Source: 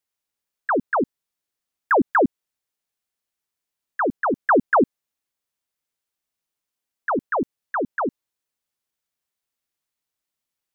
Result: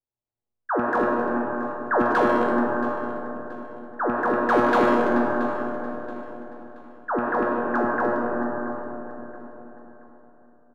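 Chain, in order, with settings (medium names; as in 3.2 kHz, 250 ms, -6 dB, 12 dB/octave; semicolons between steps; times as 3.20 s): rattle on loud lows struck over -23 dBFS, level -29 dBFS; in parallel at -2 dB: peak limiter -22 dBFS, peak gain reduction 10.5 dB; on the sum: reverberation RT60 4.0 s, pre-delay 50 ms, DRR -2 dB; level-controlled noise filter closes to 640 Hz, open at -11.5 dBFS; bass shelf 92 Hz +10.5 dB; hard clipper -8.5 dBFS, distortion -20 dB; feedback comb 120 Hz, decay 0.92 s, harmonics all, mix 90%; on a send: feedback delay 677 ms, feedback 36%, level -15 dB; on the sum: trim +8 dB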